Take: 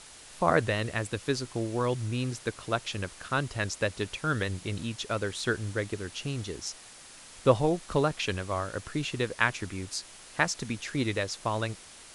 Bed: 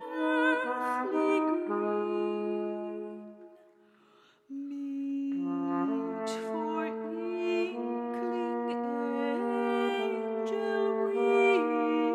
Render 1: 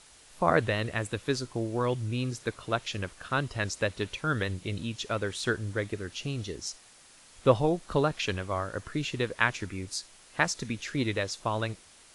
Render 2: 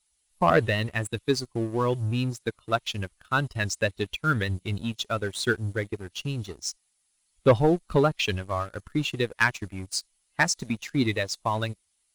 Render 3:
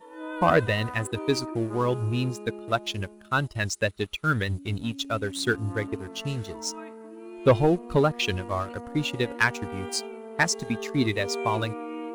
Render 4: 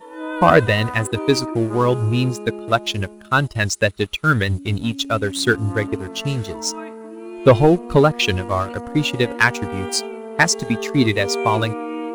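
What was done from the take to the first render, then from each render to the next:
noise print and reduce 6 dB
per-bin expansion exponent 1.5; sample leveller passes 2
add bed -7.5 dB
gain +8 dB; limiter -2 dBFS, peak gain reduction 1.5 dB

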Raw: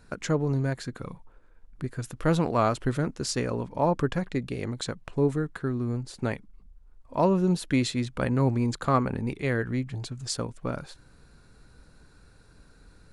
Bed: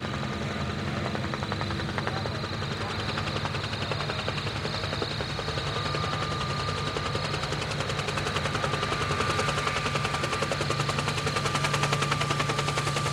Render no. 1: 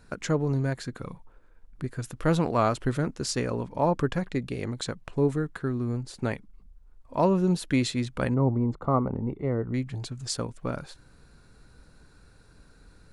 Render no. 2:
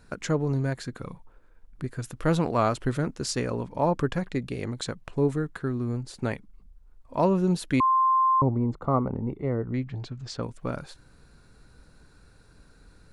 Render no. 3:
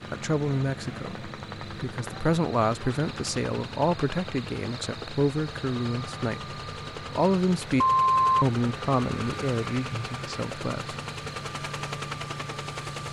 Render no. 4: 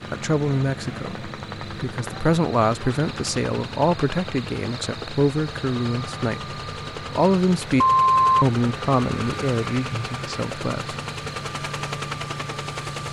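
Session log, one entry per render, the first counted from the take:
8.34–9.74 polynomial smoothing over 65 samples
7.8–8.42 bleep 1050 Hz -18 dBFS; 9.56–10.43 air absorption 150 m
add bed -7.5 dB
gain +4.5 dB

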